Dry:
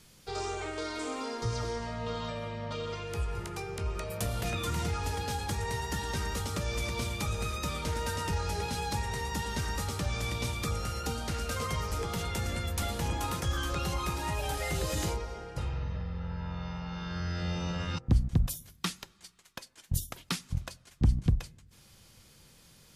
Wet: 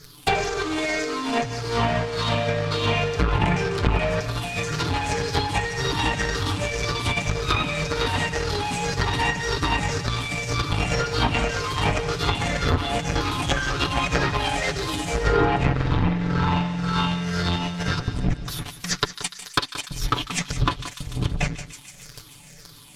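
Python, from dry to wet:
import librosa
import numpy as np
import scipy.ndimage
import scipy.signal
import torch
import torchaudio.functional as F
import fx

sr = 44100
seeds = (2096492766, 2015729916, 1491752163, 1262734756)

p1 = fx.spec_ripple(x, sr, per_octave=0.57, drift_hz=-1.9, depth_db=14)
p2 = fx.fuzz(p1, sr, gain_db=39.0, gate_db=-47.0)
p3 = p1 + (p2 * 10.0 ** (-5.0 / 20.0))
p4 = fx.peak_eq(p3, sr, hz=570.0, db=-2.5, octaves=0.38)
p5 = p4 + 0.82 * np.pad(p4, (int(6.9 * sr / 1000.0), 0))[:len(p4)]
p6 = fx.over_compress(p5, sr, threshold_db=-22.0, ratio=-0.5)
p7 = fx.echo_wet_highpass(p6, sr, ms=147, feedback_pct=72, hz=1600.0, wet_db=-15.5)
p8 = fx.env_lowpass_down(p7, sr, base_hz=700.0, full_db=-11.0)
y = p8 + fx.echo_single(p8, sr, ms=177, db=-14.0, dry=0)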